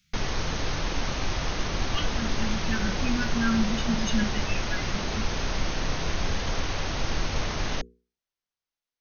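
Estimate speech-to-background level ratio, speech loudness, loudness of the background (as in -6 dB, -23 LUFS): -0.5 dB, -31.0 LUFS, -30.5 LUFS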